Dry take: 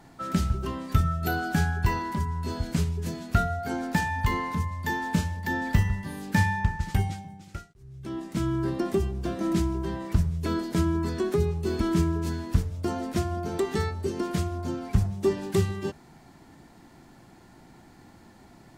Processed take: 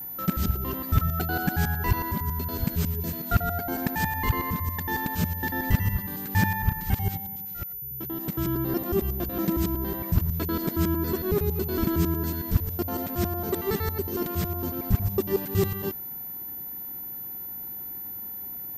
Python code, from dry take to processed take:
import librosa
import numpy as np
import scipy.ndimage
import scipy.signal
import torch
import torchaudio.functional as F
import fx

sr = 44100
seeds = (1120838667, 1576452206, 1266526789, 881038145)

y = fx.local_reverse(x, sr, ms=92.0)
y = y + 10.0 ** (-34.0 / 20.0) * np.sin(2.0 * np.pi * 14000.0 * np.arange(len(y)) / sr)